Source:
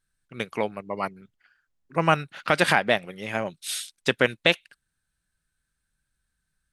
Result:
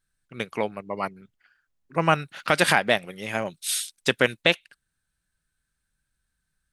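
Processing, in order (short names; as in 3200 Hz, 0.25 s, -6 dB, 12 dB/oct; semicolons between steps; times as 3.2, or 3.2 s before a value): 2.22–4.42 high shelf 5600 Hz +7.5 dB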